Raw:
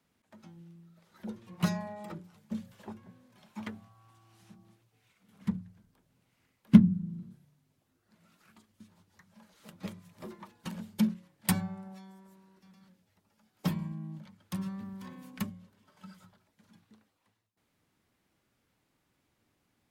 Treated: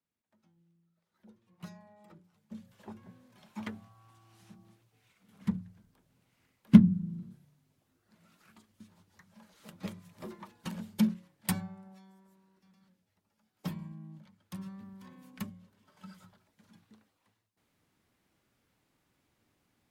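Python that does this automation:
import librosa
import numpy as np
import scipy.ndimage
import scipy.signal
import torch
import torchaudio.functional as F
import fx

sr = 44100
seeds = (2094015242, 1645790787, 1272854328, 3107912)

y = fx.gain(x, sr, db=fx.line((1.81, -17.5), (2.54, -9.0), (3.06, 0.5), (11.16, 0.5), (11.75, -6.5), (15.1, -6.5), (16.1, 0.5)))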